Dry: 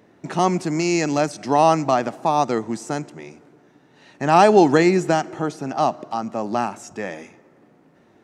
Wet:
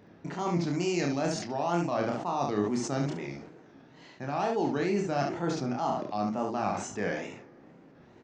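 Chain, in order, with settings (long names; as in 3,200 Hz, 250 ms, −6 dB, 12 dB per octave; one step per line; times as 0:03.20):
Butterworth low-pass 6,600 Hz 36 dB per octave
low-shelf EQ 100 Hz +7.5 dB
reversed playback
downward compressor 12 to 1, threshold −24 dBFS, peak gain reduction 17.5 dB
reversed playback
tape wow and flutter 140 cents
on a send: ambience of single reflections 29 ms −4 dB, 70 ms −6 dB
on the sum: level that may fall only so fast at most 65 dB per second
level −3.5 dB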